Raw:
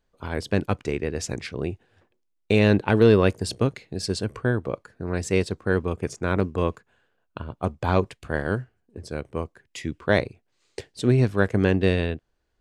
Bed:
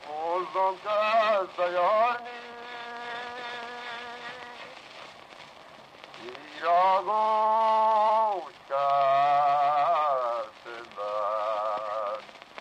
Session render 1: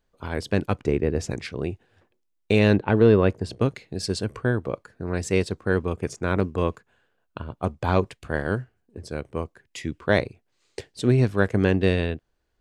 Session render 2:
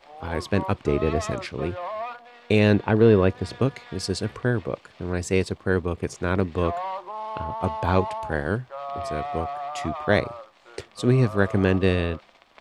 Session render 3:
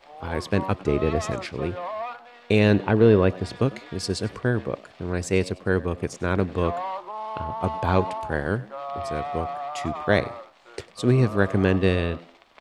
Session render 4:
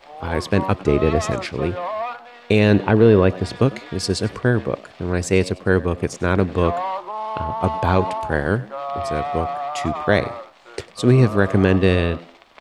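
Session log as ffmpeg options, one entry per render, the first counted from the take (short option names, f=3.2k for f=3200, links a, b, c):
-filter_complex "[0:a]asettb=1/sr,asplit=3[a][b][c];[a]atrim=end=0.804[d];[b]atrim=start=0.8:end=1.31,asetpts=PTS-STARTPTS,afade=t=in:d=0.004:c=qsin,afade=t=out:st=0.506:d=0.004:c=qsin,tiltshelf=f=1.2k:g=5.5[e];[c]atrim=start=1.306[f];[d][e]acrossfade=d=0.004:c1=hsin:c2=qsin[g];[g][f]acrossfade=d=0.004:c1=qsin:c2=hsin,asettb=1/sr,asplit=3[h][i][j];[h]atrim=end=2.764[k];[i]atrim=start=2.76:end=3.61,asetpts=PTS-STARTPTS,afade=t=in:d=0.004:c=qsin,afade=t=out:st=0.846:d=0.004:c=qsin,lowpass=f=1.8k:p=1[l];[j]atrim=start=3.606[m];[k][l]acrossfade=d=0.004:c1=hsin:c2=qsin[n];[n][m]acrossfade=d=0.004:c1=qsin:c2=hsin"
-filter_complex "[1:a]volume=-8.5dB[a];[0:a][a]amix=inputs=2:normalize=0"
-filter_complex "[0:a]asplit=4[a][b][c][d];[b]adelay=99,afreqshift=86,volume=-20.5dB[e];[c]adelay=198,afreqshift=172,volume=-29.1dB[f];[d]adelay=297,afreqshift=258,volume=-37.8dB[g];[a][e][f][g]amix=inputs=4:normalize=0"
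-af "volume=5.5dB,alimiter=limit=-3dB:level=0:latency=1"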